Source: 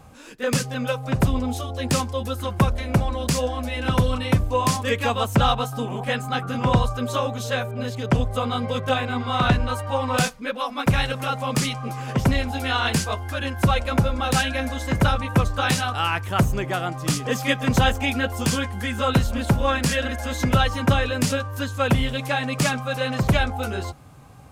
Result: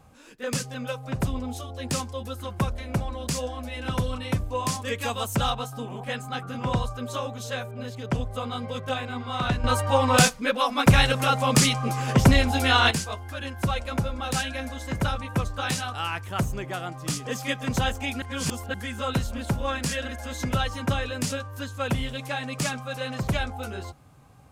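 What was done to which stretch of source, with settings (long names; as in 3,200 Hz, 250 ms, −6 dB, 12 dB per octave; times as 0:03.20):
0:04.99–0:05.50: high-shelf EQ 6,000 Hz +9 dB
0:09.64–0:12.91: clip gain +10 dB
0:18.22–0:18.74: reverse
whole clip: dynamic equaliser 7,300 Hz, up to +4 dB, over −39 dBFS, Q 0.7; level −7 dB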